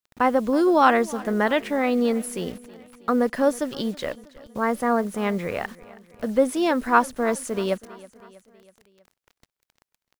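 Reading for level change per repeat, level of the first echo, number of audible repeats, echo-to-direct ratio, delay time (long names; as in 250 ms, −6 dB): −5.0 dB, −20.5 dB, 3, −19.0 dB, 322 ms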